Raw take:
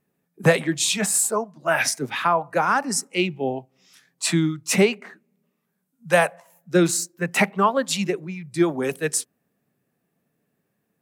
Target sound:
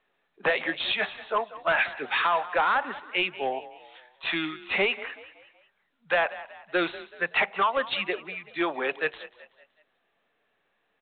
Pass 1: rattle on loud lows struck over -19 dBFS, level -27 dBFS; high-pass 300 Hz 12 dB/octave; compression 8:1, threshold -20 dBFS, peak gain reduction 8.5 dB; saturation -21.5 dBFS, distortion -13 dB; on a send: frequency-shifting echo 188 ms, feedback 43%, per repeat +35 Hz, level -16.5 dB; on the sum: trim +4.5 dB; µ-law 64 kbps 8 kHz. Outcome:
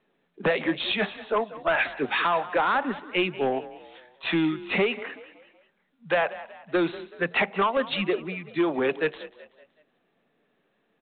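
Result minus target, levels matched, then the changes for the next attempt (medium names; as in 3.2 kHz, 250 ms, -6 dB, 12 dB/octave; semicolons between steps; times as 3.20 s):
250 Hz band +7.0 dB
change: high-pass 710 Hz 12 dB/octave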